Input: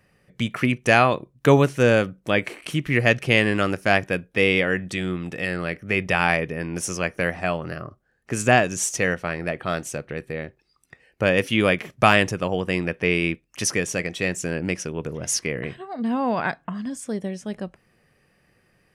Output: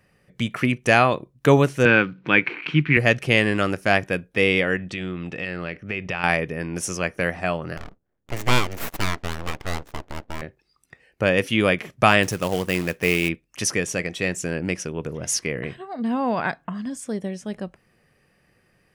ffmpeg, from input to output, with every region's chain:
ffmpeg -i in.wav -filter_complex "[0:a]asettb=1/sr,asplit=3[link_01][link_02][link_03];[link_01]atrim=end=1.854[link_04];[link_02]atrim=start=1.85:end=2.97,asetpts=PTS-STARTPTS,afade=type=in:duration=0.004:curve=qsin,afade=type=out:start_time=1.116:duration=0.004:curve=qsin,acompressor=mode=upward:threshold=-31dB:ratio=2.5:attack=3.2:release=140:knee=2.83:detection=peak,acrusher=bits=6:mode=log:mix=0:aa=0.000001,highpass=130,equalizer=frequency=150:width_type=q:width=4:gain=9,equalizer=frequency=310:width_type=q:width=4:gain=5,equalizer=frequency=610:width_type=q:width=4:gain=-10,equalizer=frequency=960:width_type=q:width=4:gain=5,equalizer=frequency=1500:width_type=q:width=4:gain=8,equalizer=frequency=2400:width_type=q:width=4:gain=9,lowpass=frequency=3900:width=0.5412,lowpass=frequency=3900:width=1.3066[link_05];[link_03]atrim=start=2.966[link_06];[link_04][link_05]acrossfade=duration=0.004:curve1=hsin:curve2=qsin[link_07];[link_07][link_06]acrossfade=duration=0.004:curve1=qsin:curve2=hsin,asettb=1/sr,asplit=3[link_08][link_09][link_10];[link_08]atrim=end=4.764[link_11];[link_09]atrim=start=4.76:end=6.24,asetpts=PTS-STARTPTS,afade=type=in:duration=0.004:curve=qsin,afade=type=out:start_time=1.476:duration=0.004:curve=qsin,lowpass=5100,equalizer=frequency=2700:width=5.2:gain=4.5,acompressor=threshold=-26dB:ratio=2.5:attack=3.2:release=140:knee=1:detection=peak[link_12];[link_10]atrim=start=6.236[link_13];[link_11][link_12]acrossfade=duration=0.004:curve1=hsin:curve2=qsin[link_14];[link_14][link_13]acrossfade=duration=0.004:curve1=qsin:curve2=hsin,asettb=1/sr,asplit=3[link_15][link_16][link_17];[link_15]atrim=end=7.774[link_18];[link_16]atrim=start=7.77:end=10.42,asetpts=PTS-STARTPTS,afade=type=in:duration=0.004:curve=qsin,afade=type=out:start_time=2.646:duration=0.004:curve=qsin,adynamicsmooth=sensitivity=7.5:basefreq=510,aeval=exprs='abs(val(0))':channel_layout=same[link_19];[link_17]atrim=start=10.416[link_20];[link_18][link_19]acrossfade=duration=0.004:curve1=hsin:curve2=qsin[link_21];[link_21][link_20]acrossfade=duration=0.004:curve1=qsin:curve2=hsin,asettb=1/sr,asplit=3[link_22][link_23][link_24];[link_22]atrim=end=12.234[link_25];[link_23]atrim=start=12.23:end=13.29,asetpts=PTS-STARTPTS,afade=type=in:duration=0.004:curve=qsin,afade=type=out:start_time=1.056:duration=0.004:curve=qsin,highshelf=frequency=7200:gain=10.5,acrusher=bits=3:mode=log:mix=0:aa=0.000001[link_26];[link_24]atrim=start=13.286[link_27];[link_25][link_26]acrossfade=duration=0.004:curve1=hsin:curve2=qsin[link_28];[link_28][link_27]acrossfade=duration=0.004:curve1=qsin:curve2=hsin" out.wav

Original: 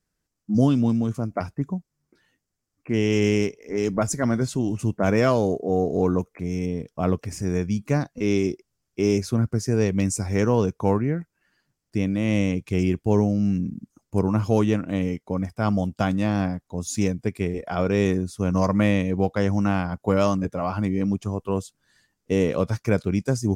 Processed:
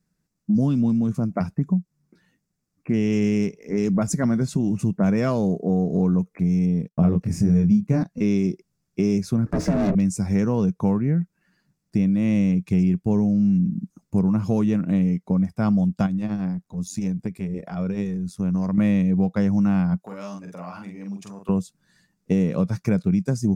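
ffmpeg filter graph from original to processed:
ffmpeg -i in.wav -filter_complex "[0:a]asettb=1/sr,asplit=3[link_01][link_02][link_03];[link_01]atrim=end=6.884[link_04];[link_02]atrim=start=6.88:end=8.03,asetpts=PTS-STARTPTS,afade=type=in:duration=0.004:curve=qsin,afade=type=out:start_time=1.146:duration=0.004:curve=qsin,lowshelf=frequency=430:gain=8,agate=range=-33dB:threshold=-35dB:ratio=3:release=100:detection=peak,asplit=2[link_05][link_06];[link_06]adelay=24,volume=-2.5dB[link_07];[link_05][link_07]amix=inputs=2:normalize=0,atrim=end_sample=50715[link_08];[link_03]atrim=start=8.026[link_09];[link_04][link_08]acrossfade=duration=0.004:curve1=hsin:curve2=qsin[link_10];[link_10][link_09]acrossfade=duration=0.004:curve1=qsin:curve2=hsin,asettb=1/sr,asplit=3[link_11][link_12][link_13];[link_11]atrim=end=9.464[link_14];[link_12]atrim=start=9.46:end=9.95,asetpts=PTS-STARTPTS,afade=type=in:duration=0.004:curve=qsin,afade=type=out:start_time=0.486:duration=0.004:curve=qsin,bandreject=frequency=60:width_type=h:width=6,bandreject=frequency=120:width_type=h:width=6,bandreject=frequency=180:width_type=h:width=6,bandreject=frequency=240:width_type=h:width=6,bandreject=frequency=300:width_type=h:width=6,bandreject=frequency=360:width_type=h:width=6,bandreject=frequency=420:width_type=h:width=6,bandreject=frequency=480:width_type=h:width=6,asplit=2[link_15][link_16];[link_16]highpass=frequency=720:poles=1,volume=31dB,asoftclip=type=tanh:threshold=-9dB[link_17];[link_15][link_17]amix=inputs=2:normalize=0,lowpass=frequency=1100:poles=1,volume=-6dB,aeval=exprs='val(0)*sin(2*PI*200*n/s)':channel_layout=same[link_18];[link_13]atrim=start=9.946[link_19];[link_14][link_18]acrossfade=duration=0.004:curve1=hsin:curve2=qsin[link_20];[link_20][link_19]acrossfade=duration=0.004:curve1=qsin:curve2=hsin,asettb=1/sr,asplit=3[link_21][link_22][link_23];[link_21]atrim=end=16.064[link_24];[link_22]atrim=start=16.06:end=18.78,asetpts=PTS-STARTPTS,afade=type=in:duration=0.004:curve=qsin,afade=type=out:start_time=2.716:duration=0.004:curve=qsin,acompressor=threshold=-31dB:ratio=2:attack=3.2:release=140:knee=1:detection=peak,tremolo=f=93:d=0.71[link_25];[link_23]atrim=start=18.776[link_26];[link_24][link_25]acrossfade=duration=0.004:curve1=hsin:curve2=qsin[link_27];[link_27][link_26]acrossfade=duration=0.004:curve1=qsin:curve2=hsin,asettb=1/sr,asplit=3[link_28][link_29][link_30];[link_28]atrim=end=20.004[link_31];[link_29]atrim=start=20:end=21.49,asetpts=PTS-STARTPTS,afade=type=in:duration=0.004:curve=qsin,afade=type=out:start_time=1.486:duration=0.004:curve=qsin,acompressor=threshold=-30dB:ratio=4:attack=3.2:release=140:knee=1:detection=peak,highpass=frequency=940:poles=1,asplit=2[link_32][link_33];[link_33]adelay=45,volume=-3.5dB[link_34];[link_32][link_34]amix=inputs=2:normalize=0,atrim=end_sample=65709[link_35];[link_30]atrim=start=21.486[link_36];[link_31][link_35]acrossfade=duration=0.004:curve1=hsin:curve2=qsin[link_37];[link_37][link_36]acrossfade=duration=0.004:curve1=qsin:curve2=hsin,equalizer=frequency=180:width=2:gain=14.5,bandreject=frequency=3100:width=11,acompressor=threshold=-19dB:ratio=3" out.wav

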